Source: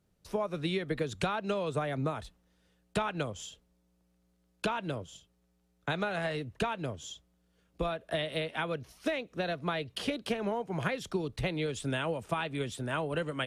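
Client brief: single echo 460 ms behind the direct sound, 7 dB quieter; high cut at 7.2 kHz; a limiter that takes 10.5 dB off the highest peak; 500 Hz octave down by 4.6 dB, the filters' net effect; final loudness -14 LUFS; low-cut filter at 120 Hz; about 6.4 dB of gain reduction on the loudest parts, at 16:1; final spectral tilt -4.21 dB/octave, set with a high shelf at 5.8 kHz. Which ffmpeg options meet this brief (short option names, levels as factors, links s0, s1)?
-af "highpass=120,lowpass=7200,equalizer=f=500:t=o:g=-6,highshelf=f=5800:g=8,acompressor=threshold=0.0178:ratio=16,alimiter=level_in=2.51:limit=0.0631:level=0:latency=1,volume=0.398,aecho=1:1:460:0.447,volume=26.6"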